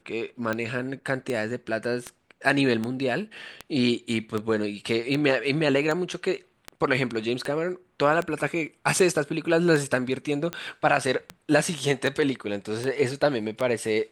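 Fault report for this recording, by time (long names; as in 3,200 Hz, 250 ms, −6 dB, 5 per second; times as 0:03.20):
scratch tick 78 rpm −15 dBFS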